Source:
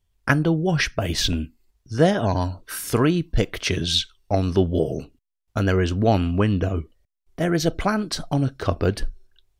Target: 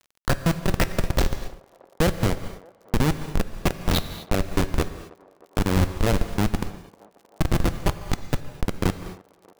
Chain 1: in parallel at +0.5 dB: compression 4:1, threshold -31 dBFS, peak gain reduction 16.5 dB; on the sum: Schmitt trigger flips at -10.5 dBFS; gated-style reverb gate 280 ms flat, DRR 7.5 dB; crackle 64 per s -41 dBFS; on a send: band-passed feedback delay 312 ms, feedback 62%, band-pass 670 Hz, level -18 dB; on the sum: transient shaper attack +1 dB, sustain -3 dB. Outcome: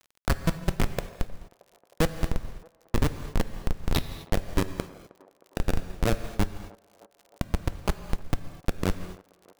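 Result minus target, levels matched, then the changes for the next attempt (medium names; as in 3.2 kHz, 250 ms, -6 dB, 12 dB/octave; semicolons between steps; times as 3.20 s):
compression: peak gain reduction +7 dB
change: compression 4:1, threshold -21.5 dBFS, peak gain reduction 9.5 dB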